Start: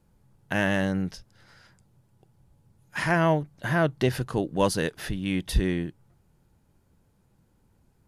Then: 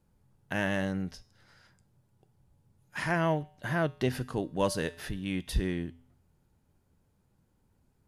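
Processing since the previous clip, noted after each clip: feedback comb 84 Hz, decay 0.57 s, harmonics odd, mix 50%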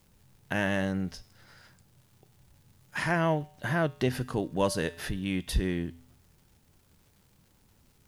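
in parallel at -2 dB: compression, threshold -38 dBFS, peak gain reduction 15 dB; on the sum: word length cut 12-bit, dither triangular; crackle 220 per s -53 dBFS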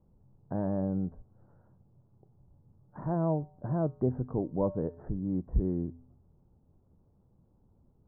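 Bessel low-pass 610 Hz, order 8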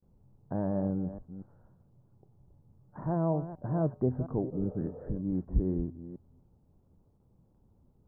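chunks repeated in reverse 237 ms, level -12 dB; gate with hold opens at -58 dBFS; spectral replace 4.55–5.04 s, 410–1300 Hz after

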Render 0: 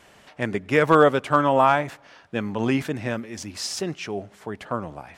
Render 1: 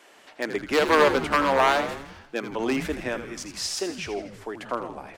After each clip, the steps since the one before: one-sided wavefolder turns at -13 dBFS; Chebyshev high-pass 300 Hz, order 3; on a send: frequency-shifting echo 81 ms, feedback 58%, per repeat -100 Hz, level -10 dB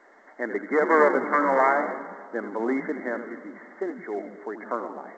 brick-wall FIR band-pass 180–2200 Hz; on a send at -15 dB: reverberation RT60 2.2 s, pre-delay 70 ms; on the sum: A-law 128 kbps 16 kHz

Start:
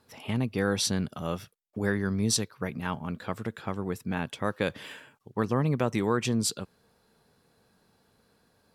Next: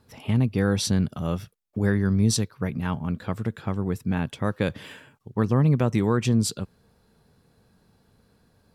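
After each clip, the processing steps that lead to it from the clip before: bass shelf 210 Hz +12 dB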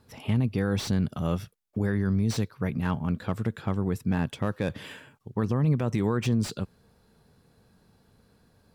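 peak limiter -17 dBFS, peak gain reduction 7 dB; slew-rate limiter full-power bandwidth 100 Hz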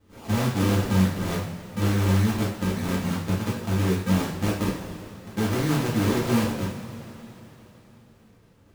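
decimation with a swept rate 42×, swing 100% 3.5 Hz; two-slope reverb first 0.49 s, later 4 s, from -18 dB, DRR -7 dB; trim -5 dB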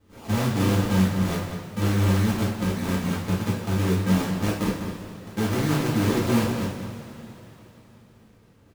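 echo from a far wall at 34 m, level -8 dB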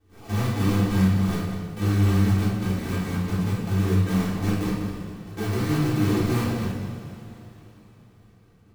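simulated room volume 2100 m³, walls furnished, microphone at 3.5 m; trim -6 dB

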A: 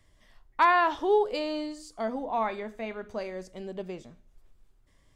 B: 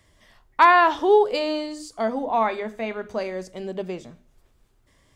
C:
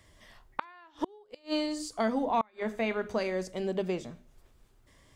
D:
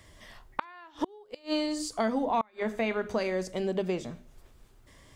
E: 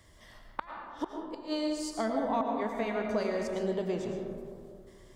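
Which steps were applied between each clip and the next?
high-pass 58 Hz 6 dB/octave; hum notches 50/100/150/200/250/300 Hz; trim +7 dB
dynamic bell 660 Hz, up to -7 dB, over -30 dBFS, Q 0.93; inverted gate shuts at -17 dBFS, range -34 dB
compression 1.5:1, threshold -37 dBFS, peak gain reduction 5.5 dB; trim +5 dB
peaking EQ 2.5 kHz -5.5 dB 0.38 oct; algorithmic reverb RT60 2.3 s, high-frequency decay 0.3×, pre-delay 70 ms, DRR 2 dB; trim -4 dB

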